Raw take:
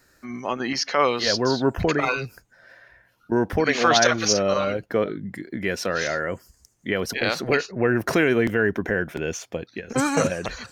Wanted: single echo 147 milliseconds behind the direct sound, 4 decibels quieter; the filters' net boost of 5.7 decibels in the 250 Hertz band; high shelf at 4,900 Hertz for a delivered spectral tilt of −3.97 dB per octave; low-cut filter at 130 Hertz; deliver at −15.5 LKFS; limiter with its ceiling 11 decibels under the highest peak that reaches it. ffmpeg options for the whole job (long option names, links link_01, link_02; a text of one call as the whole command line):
ffmpeg -i in.wav -af "highpass=130,equalizer=frequency=250:width_type=o:gain=7.5,highshelf=frequency=4900:gain=5,alimiter=limit=-14dB:level=0:latency=1,aecho=1:1:147:0.631,volume=8dB" out.wav